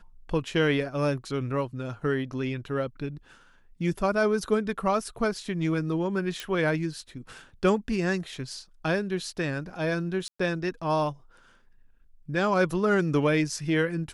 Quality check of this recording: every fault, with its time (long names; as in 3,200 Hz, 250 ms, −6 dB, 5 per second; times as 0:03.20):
0:06.40: click −18 dBFS
0:10.28–0:10.39: drop-out 115 ms